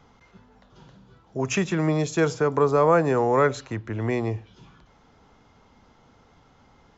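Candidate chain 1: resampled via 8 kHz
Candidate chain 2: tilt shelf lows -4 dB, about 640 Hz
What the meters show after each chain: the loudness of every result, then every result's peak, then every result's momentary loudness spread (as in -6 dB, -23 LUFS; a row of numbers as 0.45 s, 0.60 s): -23.5 LUFS, -23.5 LUFS; -7.5 dBFS, -7.5 dBFS; 13 LU, 14 LU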